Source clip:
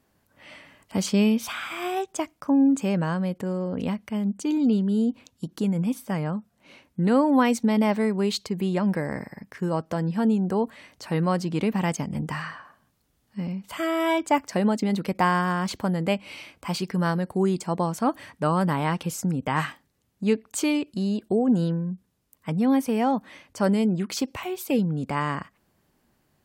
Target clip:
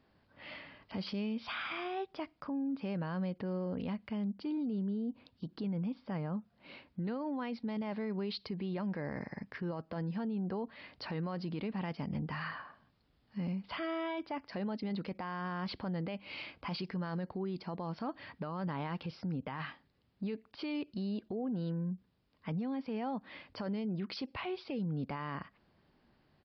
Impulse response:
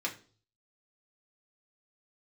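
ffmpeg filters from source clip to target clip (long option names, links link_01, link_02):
-filter_complex "[0:a]acompressor=threshold=-34dB:ratio=2.5,alimiter=level_in=5dB:limit=-24dB:level=0:latency=1:release=11,volume=-5dB,aresample=11025,aresample=44100,asplit=3[link_01][link_02][link_03];[link_01]afade=type=out:start_time=4.45:duration=0.02[link_04];[link_02]adynamicequalizer=threshold=0.00141:dfrequency=1500:dqfactor=0.7:tfrequency=1500:tqfactor=0.7:attack=5:release=100:ratio=0.375:range=3.5:mode=cutabove:tftype=highshelf,afade=type=in:start_time=4.45:duration=0.02,afade=type=out:start_time=6.37:duration=0.02[link_05];[link_03]afade=type=in:start_time=6.37:duration=0.02[link_06];[link_04][link_05][link_06]amix=inputs=3:normalize=0,volume=-1.5dB"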